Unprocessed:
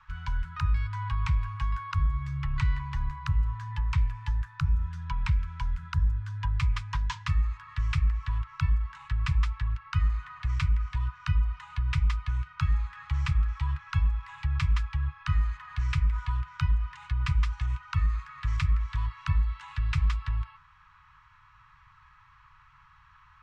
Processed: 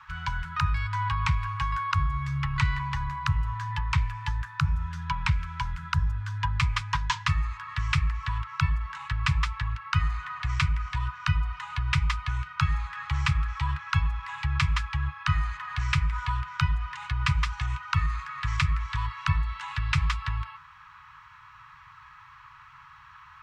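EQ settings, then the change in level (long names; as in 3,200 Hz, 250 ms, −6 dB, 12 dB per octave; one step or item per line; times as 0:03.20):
high-pass filter 180 Hz 6 dB per octave
+8.5 dB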